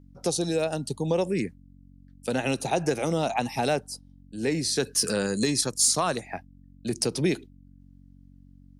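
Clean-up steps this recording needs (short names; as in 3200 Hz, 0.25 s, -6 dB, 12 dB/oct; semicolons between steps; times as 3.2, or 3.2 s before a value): clip repair -12 dBFS; de-hum 46.4 Hz, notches 6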